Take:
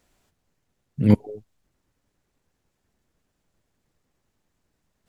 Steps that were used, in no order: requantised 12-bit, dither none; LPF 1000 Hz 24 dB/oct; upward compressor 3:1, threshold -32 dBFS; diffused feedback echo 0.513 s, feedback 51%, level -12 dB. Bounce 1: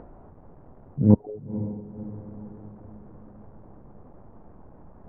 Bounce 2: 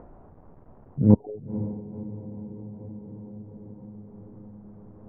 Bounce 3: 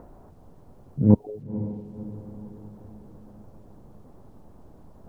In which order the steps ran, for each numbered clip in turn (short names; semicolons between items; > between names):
requantised > LPF > upward compressor > diffused feedback echo; diffused feedback echo > requantised > upward compressor > LPF; upward compressor > LPF > requantised > diffused feedback echo